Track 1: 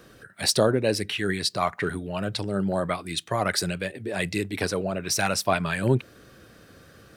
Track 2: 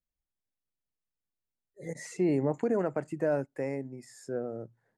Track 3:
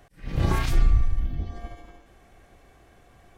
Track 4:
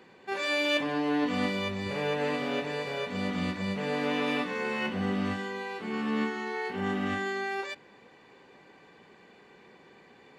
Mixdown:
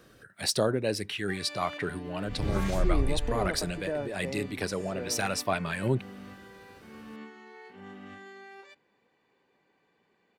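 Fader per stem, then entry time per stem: -5.5, -4.5, -7.5, -15.5 dB; 0.00, 0.65, 2.05, 1.00 s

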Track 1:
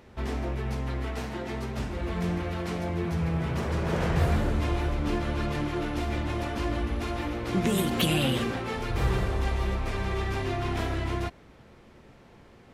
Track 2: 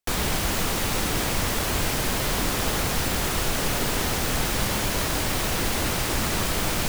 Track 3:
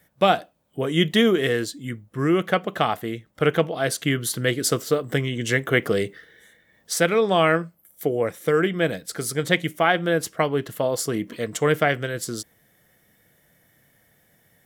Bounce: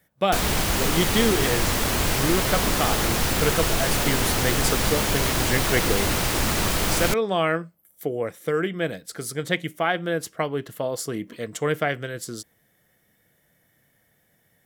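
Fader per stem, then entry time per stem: off, +2.0 dB, -4.0 dB; off, 0.25 s, 0.00 s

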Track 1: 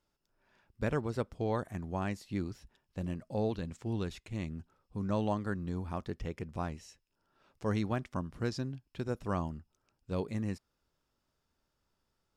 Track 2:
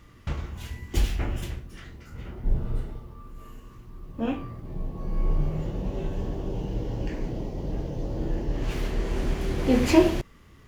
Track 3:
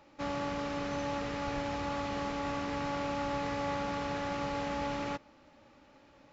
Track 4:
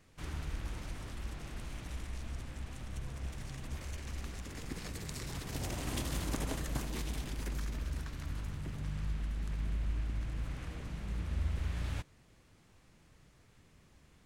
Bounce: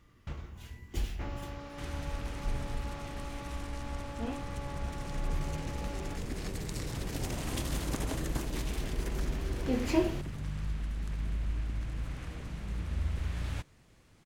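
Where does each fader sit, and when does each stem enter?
off, -10.0 dB, -10.0 dB, +1.5 dB; off, 0.00 s, 1.00 s, 1.60 s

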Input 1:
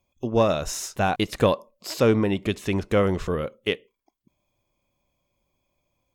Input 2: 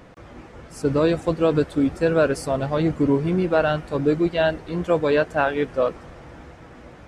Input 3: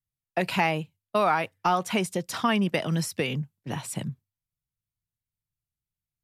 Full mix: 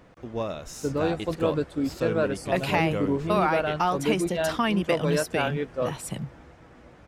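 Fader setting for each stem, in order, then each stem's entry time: -10.5, -7.0, -1.0 dB; 0.00, 0.00, 2.15 s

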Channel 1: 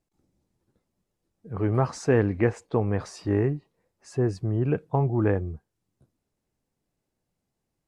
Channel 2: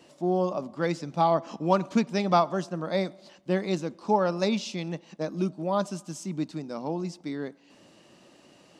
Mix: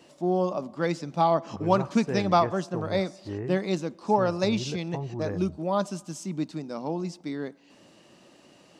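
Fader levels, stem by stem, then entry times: -10.5, +0.5 dB; 0.00, 0.00 s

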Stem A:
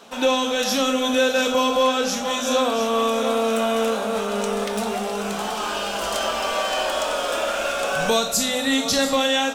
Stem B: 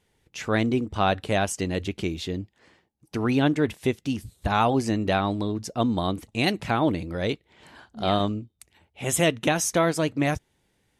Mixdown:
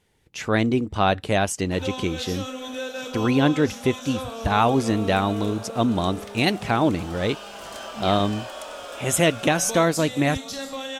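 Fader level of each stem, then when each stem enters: -12.5, +2.5 dB; 1.60, 0.00 s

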